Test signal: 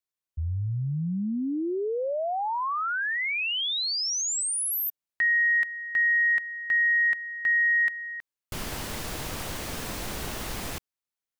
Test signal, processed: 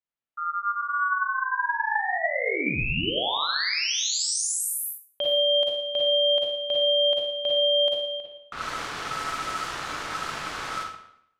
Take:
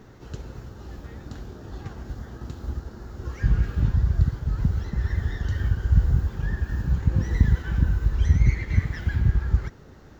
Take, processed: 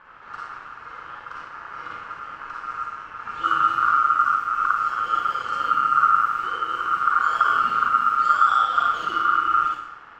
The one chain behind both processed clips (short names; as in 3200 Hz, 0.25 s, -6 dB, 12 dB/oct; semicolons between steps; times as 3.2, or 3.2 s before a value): Schroeder reverb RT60 0.72 s, DRR -3.5 dB; ring modulator 1300 Hz; low-pass opened by the level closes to 2800 Hz, open at -20 dBFS